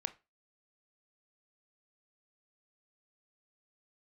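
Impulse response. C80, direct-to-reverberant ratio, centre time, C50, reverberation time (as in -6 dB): 25.5 dB, 11.0 dB, 4 ms, 18.5 dB, 0.25 s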